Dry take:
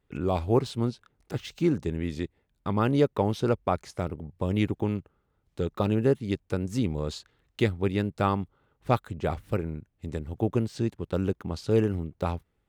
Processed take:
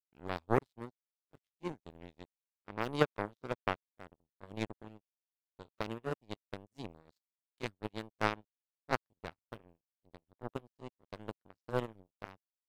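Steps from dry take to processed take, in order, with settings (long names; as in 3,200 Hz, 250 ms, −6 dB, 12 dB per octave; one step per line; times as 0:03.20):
pitch glide at a constant tempo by +2 semitones starting unshifted
power curve on the samples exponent 3
level +2 dB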